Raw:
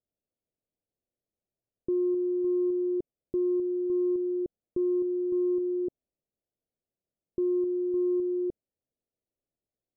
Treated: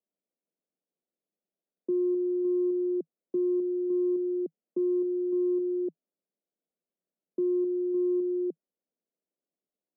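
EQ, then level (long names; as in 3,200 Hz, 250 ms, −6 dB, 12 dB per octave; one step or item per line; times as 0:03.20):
Butterworth high-pass 160 Hz 96 dB per octave
low-pass filter 1,000 Hz 12 dB per octave
0.0 dB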